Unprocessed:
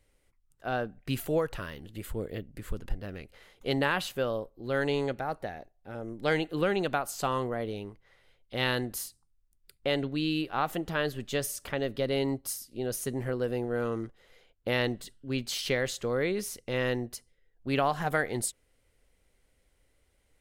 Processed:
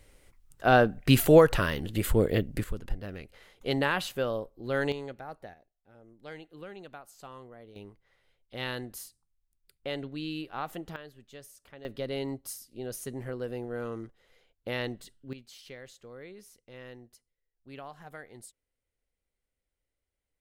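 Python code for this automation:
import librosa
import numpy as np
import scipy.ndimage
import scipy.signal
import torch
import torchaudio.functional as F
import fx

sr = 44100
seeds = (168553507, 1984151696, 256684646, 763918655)

y = fx.gain(x, sr, db=fx.steps((0.0, 11.0), (2.64, 0.0), (4.92, -9.0), (5.54, -17.0), (7.76, -6.5), (10.96, -17.5), (11.85, -5.0), (15.33, -17.5)))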